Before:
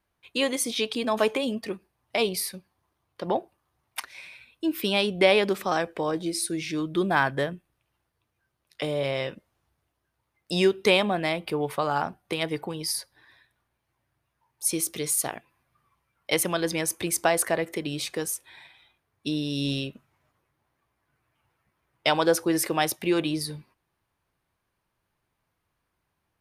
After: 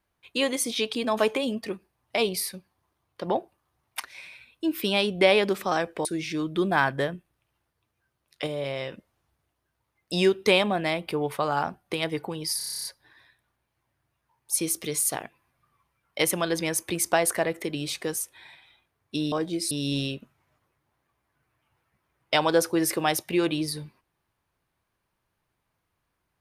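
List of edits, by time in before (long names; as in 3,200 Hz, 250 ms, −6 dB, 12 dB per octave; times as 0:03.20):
0:06.05–0:06.44: move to 0:19.44
0:08.86–0:09.31: clip gain −3.5 dB
0:12.97: stutter 0.03 s, 10 plays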